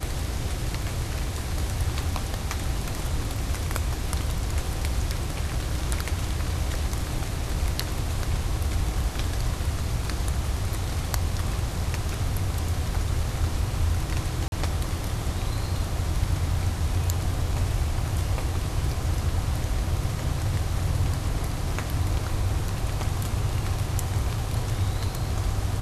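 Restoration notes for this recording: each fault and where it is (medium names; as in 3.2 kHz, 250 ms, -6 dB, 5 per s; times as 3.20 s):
14.48–14.52 s: dropout 41 ms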